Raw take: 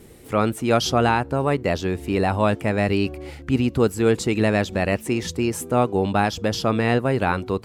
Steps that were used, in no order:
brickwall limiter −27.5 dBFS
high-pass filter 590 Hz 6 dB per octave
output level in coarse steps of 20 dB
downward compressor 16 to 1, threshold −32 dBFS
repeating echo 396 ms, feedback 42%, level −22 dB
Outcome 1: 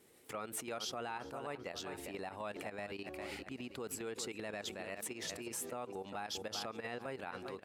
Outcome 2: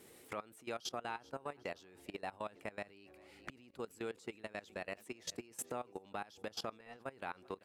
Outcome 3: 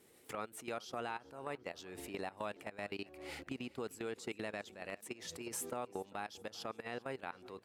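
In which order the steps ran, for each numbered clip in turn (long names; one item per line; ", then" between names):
output level in coarse steps, then repeating echo, then brickwall limiter, then downward compressor, then high-pass filter
repeating echo, then downward compressor, then high-pass filter, then output level in coarse steps, then brickwall limiter
output level in coarse steps, then downward compressor, then high-pass filter, then brickwall limiter, then repeating echo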